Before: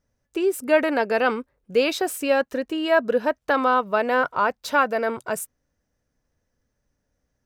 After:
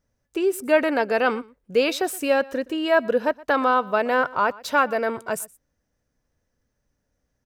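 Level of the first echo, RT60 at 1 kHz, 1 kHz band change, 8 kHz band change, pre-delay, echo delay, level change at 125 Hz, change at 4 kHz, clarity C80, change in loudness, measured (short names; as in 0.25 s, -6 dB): -22.0 dB, none, 0.0 dB, 0.0 dB, none, 0.12 s, n/a, 0.0 dB, none, 0.0 dB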